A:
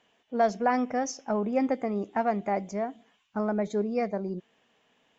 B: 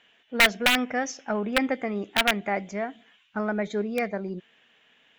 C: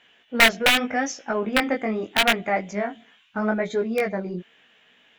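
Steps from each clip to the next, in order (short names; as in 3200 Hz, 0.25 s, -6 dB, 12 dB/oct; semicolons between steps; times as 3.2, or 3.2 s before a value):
wrapped overs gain 17 dB; band shelf 2300 Hz +9.5 dB
chorus 0.8 Hz, delay 16.5 ms, depth 6.4 ms; gain +6.5 dB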